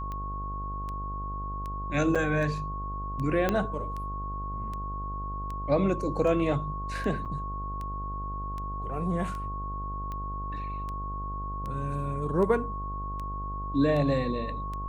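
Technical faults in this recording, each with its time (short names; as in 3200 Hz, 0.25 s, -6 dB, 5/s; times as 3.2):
buzz 50 Hz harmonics 18 -36 dBFS
tick 78 rpm -25 dBFS
tone 1100 Hz -35 dBFS
2.15–2.16 gap 5.8 ms
3.49 pop -12 dBFS
7.25–7.26 gap 7.6 ms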